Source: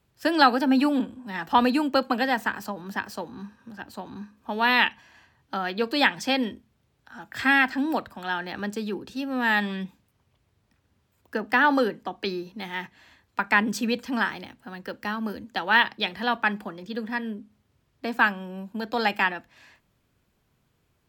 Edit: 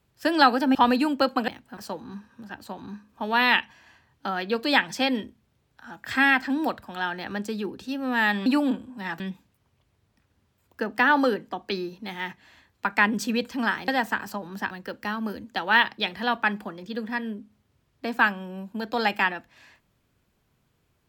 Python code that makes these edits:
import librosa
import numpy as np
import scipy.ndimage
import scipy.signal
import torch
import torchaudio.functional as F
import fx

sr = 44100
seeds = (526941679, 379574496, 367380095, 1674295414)

y = fx.edit(x, sr, fx.move(start_s=0.75, length_s=0.74, to_s=9.74),
    fx.swap(start_s=2.22, length_s=0.83, other_s=14.42, other_length_s=0.29), tone=tone)